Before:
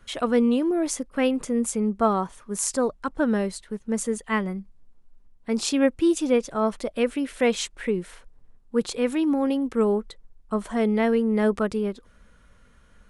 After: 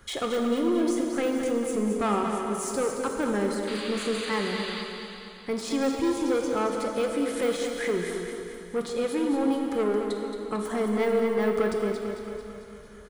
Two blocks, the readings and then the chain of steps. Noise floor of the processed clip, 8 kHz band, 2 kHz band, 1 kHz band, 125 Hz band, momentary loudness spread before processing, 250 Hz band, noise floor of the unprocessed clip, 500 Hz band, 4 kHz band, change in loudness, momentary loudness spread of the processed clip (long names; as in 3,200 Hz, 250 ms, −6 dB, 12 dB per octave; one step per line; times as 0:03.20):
−44 dBFS, −6.0 dB, −1.0 dB, −1.0 dB, −3.5 dB, 9 LU, −3.5 dB, −56 dBFS, −1.0 dB, 0.0 dB, −3.0 dB, 9 LU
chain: high-pass filter 72 Hz 6 dB per octave
notch filter 2,700 Hz, Q 7.6
de-essing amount 90%
high-shelf EQ 9,500 Hz +5.5 dB
comb filter 2.4 ms, depth 32%
in parallel at +3 dB: downward compressor, threshold −34 dBFS, peak gain reduction 17 dB
on the sum: sound drawn into the spectrogram noise, 0:03.67–0:04.82, 1,000–4,900 Hz −35 dBFS
soft clipping −18.5 dBFS, distortion −12 dB
on a send: repeating echo 223 ms, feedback 57%, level −8 dB
on the sum: dense smooth reverb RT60 2.7 s, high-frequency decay 0.9×, DRR 3 dB
level −3.5 dB